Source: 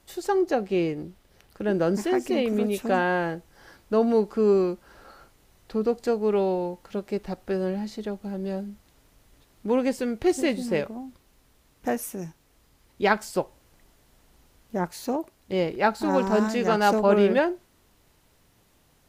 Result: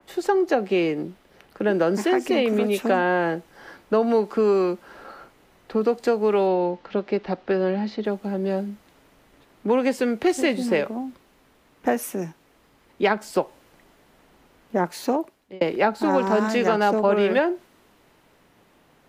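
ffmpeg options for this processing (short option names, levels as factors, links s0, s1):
-filter_complex "[0:a]asettb=1/sr,asplit=3[s0][s1][s2];[s0]atrim=end=6.474[s3];[s1]atrim=start=6.47:end=8.05,asetpts=PTS-STARTPTS,afade=t=in:d=0.004:c=qsin,afade=t=out:st=1.576:d=0.004:c=qsin,lowpass=f=5000:w=0.5412,lowpass=f=5000:w=1.3066[s4];[s2]atrim=start=8.046[s5];[s3][s4]acrossfade=d=0.004:c1=hsin:c2=qsin[s6];[s6][s5]acrossfade=d=0.004:c1=qsin:c2=hsin,asplit=2[s7][s8];[s7]atrim=end=15.61,asetpts=PTS-STARTPTS,afade=t=out:st=15.07:d=0.54[s9];[s8]atrim=start=15.61,asetpts=PTS-STARTPTS,afade=t=in:d=0.004:c=hsin[s10];[s9][s10]concat=n=2:v=0:a=1,acrossover=split=160 3000:gain=0.224 1 0.251[s11][s12][s13];[s11][s12][s13]amix=inputs=3:normalize=0,acrossover=split=140|690[s14][s15][s16];[s14]acompressor=threshold=0.00158:ratio=4[s17];[s15]acompressor=threshold=0.0398:ratio=4[s18];[s16]acompressor=threshold=0.0251:ratio=4[s19];[s17][s18][s19]amix=inputs=3:normalize=0,adynamicequalizer=threshold=0.00398:dfrequency=2900:dqfactor=0.7:tfrequency=2900:tqfactor=0.7:attack=5:release=100:ratio=0.375:range=3:mode=boostabove:tftype=highshelf,volume=2.51"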